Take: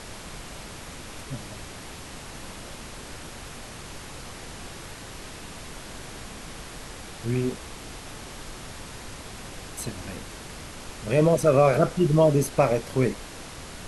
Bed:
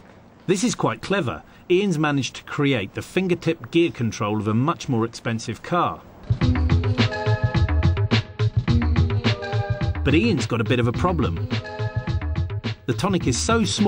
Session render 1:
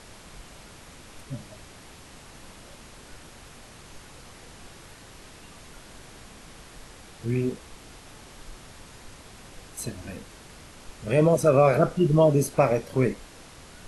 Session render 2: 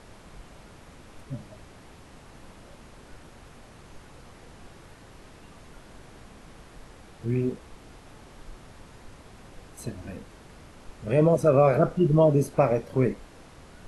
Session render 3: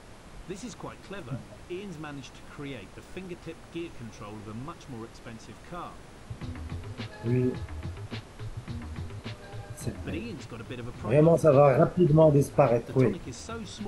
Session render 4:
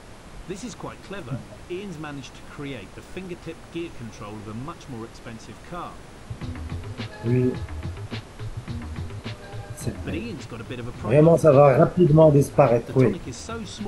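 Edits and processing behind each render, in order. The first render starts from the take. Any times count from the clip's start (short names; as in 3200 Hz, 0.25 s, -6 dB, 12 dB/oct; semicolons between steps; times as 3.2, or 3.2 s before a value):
noise print and reduce 7 dB
high shelf 2200 Hz -9.5 dB
add bed -19 dB
gain +5 dB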